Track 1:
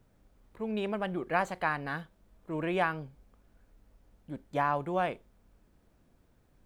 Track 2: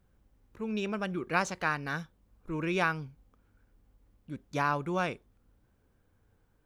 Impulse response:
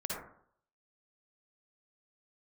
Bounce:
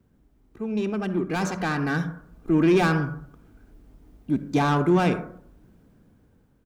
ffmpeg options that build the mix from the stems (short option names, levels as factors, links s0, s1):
-filter_complex "[0:a]volume=0.422[s0];[1:a]adelay=2.6,volume=0.794,asplit=2[s1][s2];[s2]volume=0.211[s3];[2:a]atrim=start_sample=2205[s4];[s3][s4]afir=irnorm=-1:irlink=0[s5];[s0][s1][s5]amix=inputs=3:normalize=0,asoftclip=type=tanh:threshold=0.0355,equalizer=f=210:t=o:w=1.8:g=11.5,dynaudnorm=f=630:g=5:m=2.82"